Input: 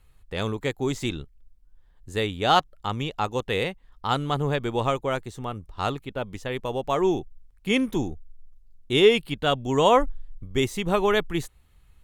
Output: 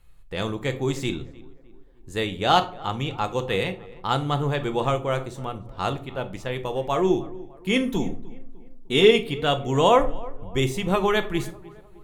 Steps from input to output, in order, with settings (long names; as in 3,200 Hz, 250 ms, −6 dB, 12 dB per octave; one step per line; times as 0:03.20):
0:07.75–0:09.11: comb filter 4.4 ms, depth 59%
tape delay 303 ms, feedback 53%, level −19 dB, low-pass 1,600 Hz
rectangular room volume 350 cubic metres, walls furnished, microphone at 0.77 metres